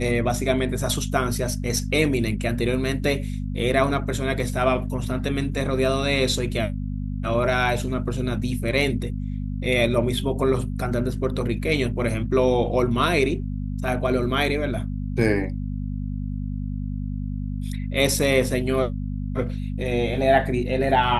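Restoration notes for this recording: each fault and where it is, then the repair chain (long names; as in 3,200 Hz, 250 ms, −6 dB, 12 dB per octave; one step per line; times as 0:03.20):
mains hum 50 Hz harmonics 5 −28 dBFS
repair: hum removal 50 Hz, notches 5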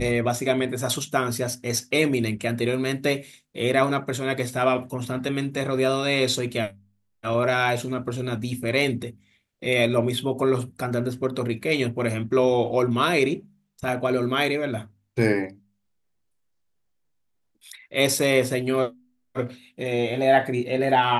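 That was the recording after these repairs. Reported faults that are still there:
none of them is left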